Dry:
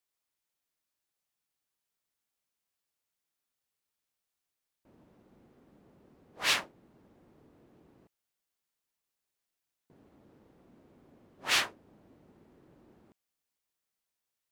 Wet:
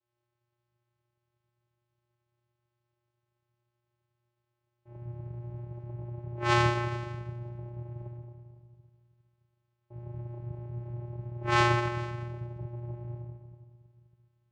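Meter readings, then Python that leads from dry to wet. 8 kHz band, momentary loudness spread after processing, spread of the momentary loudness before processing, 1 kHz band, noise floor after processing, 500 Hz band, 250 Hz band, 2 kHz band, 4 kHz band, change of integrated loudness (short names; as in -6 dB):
-8.5 dB, 21 LU, 10 LU, +11.5 dB, -83 dBFS, +14.5 dB, +17.0 dB, +2.0 dB, -5.5 dB, -3.0 dB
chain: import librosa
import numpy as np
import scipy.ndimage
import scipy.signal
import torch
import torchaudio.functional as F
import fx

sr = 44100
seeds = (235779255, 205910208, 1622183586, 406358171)

y = x + 0.86 * np.pad(x, (int(4.7 * sr / 1000.0), 0))[:len(x)]
y = y + 10.0 ** (-21.0 / 20.0) * np.pad(y, (int(423 * sr / 1000.0), 0))[:len(y)]
y = fx.room_shoebox(y, sr, seeds[0], volume_m3=1500.0, walls='mixed', distance_m=4.1)
y = fx.vocoder(y, sr, bands=4, carrier='square', carrier_hz=119.0)
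y = fx.lowpass(y, sr, hz=1600.0, slope=6)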